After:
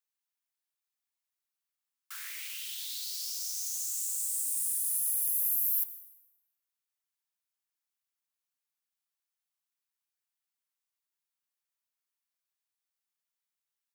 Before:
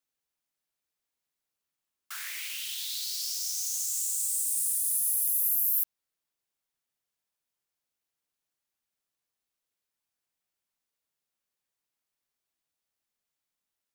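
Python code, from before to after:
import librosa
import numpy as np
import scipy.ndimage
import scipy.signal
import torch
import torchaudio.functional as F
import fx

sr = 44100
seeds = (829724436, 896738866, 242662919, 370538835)

y = scipy.signal.sosfilt(scipy.signal.butter(4, 830.0, 'highpass', fs=sr, output='sos'), x)
y = fx.high_shelf(y, sr, hz=9800.0, db=4.0)
y = fx.mod_noise(y, sr, seeds[0], snr_db=29)
y = fx.rev_plate(y, sr, seeds[1], rt60_s=1.1, hf_ratio=0.8, predelay_ms=80, drr_db=14.5)
y = y * 10.0 ** (-5.5 / 20.0)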